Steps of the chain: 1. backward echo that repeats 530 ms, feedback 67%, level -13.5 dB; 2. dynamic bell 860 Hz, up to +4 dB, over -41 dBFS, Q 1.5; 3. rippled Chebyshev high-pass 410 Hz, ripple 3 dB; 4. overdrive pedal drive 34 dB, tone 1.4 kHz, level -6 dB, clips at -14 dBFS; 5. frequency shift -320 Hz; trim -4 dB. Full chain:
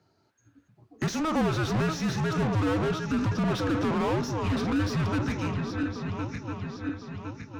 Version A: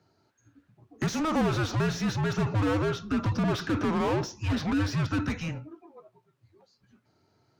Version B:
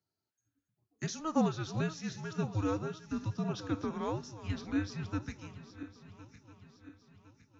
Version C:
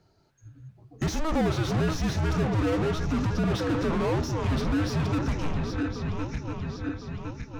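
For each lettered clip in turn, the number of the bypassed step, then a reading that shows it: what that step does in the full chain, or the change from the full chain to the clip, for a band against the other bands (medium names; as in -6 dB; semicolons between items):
1, momentary loudness spread change -3 LU; 4, crest factor change +7.5 dB; 3, 125 Hz band +1.5 dB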